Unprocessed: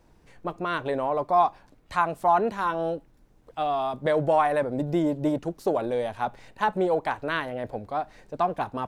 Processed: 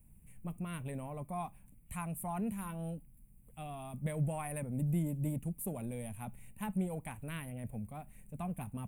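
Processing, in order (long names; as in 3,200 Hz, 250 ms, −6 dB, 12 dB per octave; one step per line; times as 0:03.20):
drawn EQ curve 210 Hz 0 dB, 330 Hz −19 dB, 1,600 Hz −22 dB, 2,400 Hz −8 dB, 5,000 Hz −30 dB, 9,400 Hz +11 dB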